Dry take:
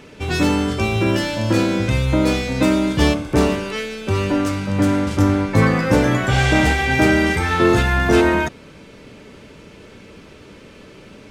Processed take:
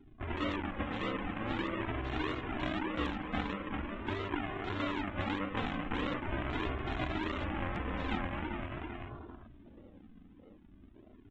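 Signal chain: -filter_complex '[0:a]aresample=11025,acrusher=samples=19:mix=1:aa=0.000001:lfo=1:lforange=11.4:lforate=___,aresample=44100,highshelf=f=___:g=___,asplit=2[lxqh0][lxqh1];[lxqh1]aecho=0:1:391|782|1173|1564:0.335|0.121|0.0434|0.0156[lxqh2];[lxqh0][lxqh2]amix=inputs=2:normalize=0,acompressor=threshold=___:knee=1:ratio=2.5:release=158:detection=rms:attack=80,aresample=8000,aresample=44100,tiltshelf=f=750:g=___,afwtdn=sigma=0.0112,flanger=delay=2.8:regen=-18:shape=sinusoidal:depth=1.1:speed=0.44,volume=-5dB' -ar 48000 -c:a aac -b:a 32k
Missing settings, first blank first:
1.6, 2.5k, -5.5, -28dB, -5.5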